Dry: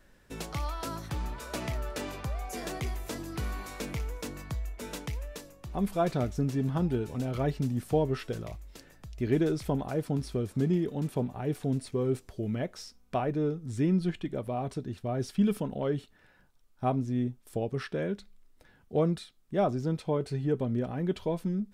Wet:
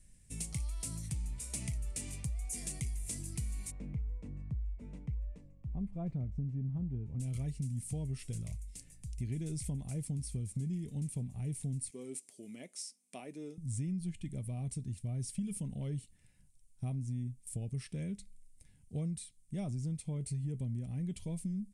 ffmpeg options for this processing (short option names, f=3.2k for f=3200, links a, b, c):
-filter_complex "[0:a]asplit=3[a][b][c];[a]afade=t=out:st=3.7:d=0.02[d];[b]lowpass=1.1k,afade=t=in:st=3.7:d=0.02,afade=t=out:st=7.19:d=0.02[e];[c]afade=t=in:st=7.19:d=0.02[f];[d][e][f]amix=inputs=3:normalize=0,asettb=1/sr,asplit=3[g][h][i];[g]atrim=end=11.904[j];[h]atrim=start=11.9:end=13.58,asetpts=PTS-STARTPTS,afade=t=in:d=0.004:c=qsin,afade=t=out:st=1.676:d=0.004:c=qsin,highpass=f=280:w=0.5412,highpass=f=280:w=1.3066[k];[i]atrim=start=13.576[l];[j][k]acrossfade=d=0.004:c1=hsin:c2=qsin[m];[m][l]acrossfade=d=0.004:c1=qsin:c2=hsin,firequalizer=gain_entry='entry(130,0);entry(360,-19);entry(1500,-26);entry(2100,-9);entry(3600,-12);entry(9200,12);entry(14000,-17)':delay=0.05:min_phase=1,acompressor=threshold=-36dB:ratio=6,volume=2dB"